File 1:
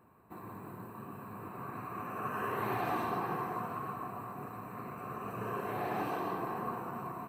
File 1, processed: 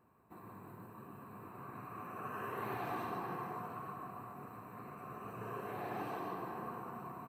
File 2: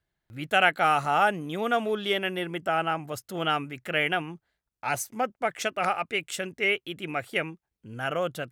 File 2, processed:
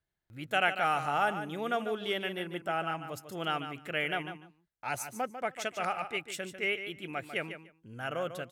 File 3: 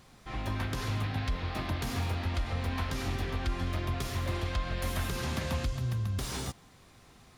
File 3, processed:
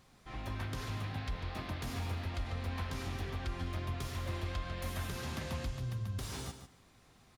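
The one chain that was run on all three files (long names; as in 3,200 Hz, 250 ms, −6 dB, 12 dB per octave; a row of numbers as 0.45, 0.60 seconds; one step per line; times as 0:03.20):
pitch vibrato 2.7 Hz 8.4 cents
on a send: repeating echo 147 ms, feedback 16%, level −10 dB
on the sum: level −6.5 dB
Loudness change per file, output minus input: −6.0, −6.0, −6.0 LU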